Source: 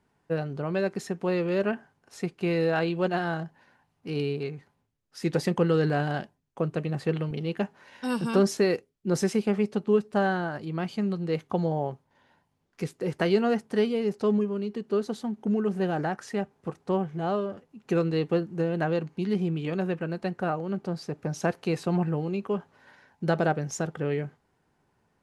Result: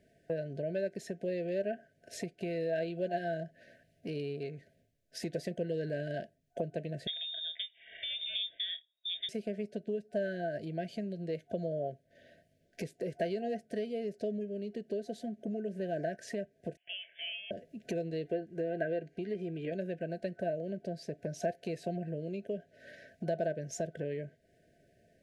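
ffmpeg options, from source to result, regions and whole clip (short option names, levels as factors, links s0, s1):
-filter_complex "[0:a]asettb=1/sr,asplit=3[s0][s1][s2];[s0]atrim=end=7.074[s3];[s1]atrim=start=7.07:end=9.29,asetpts=PTS-STARTPTS,afade=t=in:d=0.004:c=qsin,afade=t=out:st=2.216:d=0.004:c=qsin,lowpass=f=3200:t=q:w=0.5098,lowpass=f=3200:t=q:w=0.6013,lowpass=f=3200:t=q:w=0.9,lowpass=f=3200:t=q:w=2.563,afreqshift=-3800,asplit=2[s4][s5];[s5]adelay=25,volume=0.251[s6];[s4][s6]amix=inputs=2:normalize=0,atrim=end_sample=97902[s7];[s2]atrim=start=9.286[s8];[s3][s7]acrossfade=d=0.004:c1=hsin:c2=qsin[s9];[s9][s8]acrossfade=d=0.004:c1=qsin:c2=hsin,asettb=1/sr,asplit=3[s10][s11][s12];[s10]atrim=end=16.774[s13];[s11]atrim=start=16.77:end=17.51,asetpts=PTS-STARTPTS,afade=t=in:d=0.004:c=qsin,afade=t=out:st=0.736:d=0.004:c=qsin,highpass=f=820:w=0.5412,highpass=f=820:w=1.3066,lowpass=f=3200:t=q:w=0.5098,lowpass=f=3200:t=q:w=0.6013,lowpass=f=3200:t=q:w=0.9,lowpass=f=3200:t=q:w=2.563,afreqshift=-3800[s14];[s12]atrim=start=17.506[s15];[s13][s14]acrossfade=d=0.004:c1=hsin:c2=qsin[s16];[s16][s15]acrossfade=d=0.004:c1=qsin:c2=hsin,asettb=1/sr,asplit=3[s17][s18][s19];[s17]atrim=end=18.254[s20];[s18]atrim=start=18.25:end=19.72,asetpts=PTS-STARTPTS,afade=t=in:d=0.004:c=qsin,afade=t=out:st=1.466:d=0.004:c=qsin,equalizer=f=1300:t=o:w=2.3:g=5,acrossover=split=2800[s21][s22];[s22]acompressor=threshold=0.00224:ratio=4:attack=1:release=60[s23];[s21][s23]amix=inputs=2:normalize=0,aecho=1:1:2.5:0.37,atrim=end_sample=64827[s24];[s19]atrim=start=19.716[s25];[s20][s24]acrossfade=d=0.004:c1=hsin:c2=qsin[s26];[s26][s25]acrossfade=d=0.004:c1=qsin:c2=hsin,afftfilt=real='re*(1-between(b*sr/4096,700,1500))':imag='im*(1-between(b*sr/4096,700,1500))':win_size=4096:overlap=0.75,acompressor=threshold=0.00631:ratio=3,equalizer=f=670:t=o:w=0.69:g=11.5,volume=1.33"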